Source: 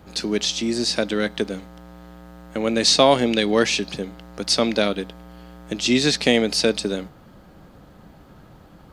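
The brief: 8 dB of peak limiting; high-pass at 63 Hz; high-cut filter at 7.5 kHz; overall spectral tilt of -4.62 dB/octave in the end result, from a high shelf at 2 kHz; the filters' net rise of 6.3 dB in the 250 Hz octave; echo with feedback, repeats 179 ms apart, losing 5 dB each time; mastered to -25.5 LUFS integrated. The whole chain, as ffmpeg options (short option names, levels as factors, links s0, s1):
-af "highpass=63,lowpass=7500,equalizer=f=250:t=o:g=7.5,highshelf=f=2000:g=-4,alimiter=limit=0.316:level=0:latency=1,aecho=1:1:179|358|537|716|895|1074|1253:0.562|0.315|0.176|0.0988|0.0553|0.031|0.0173,volume=0.562"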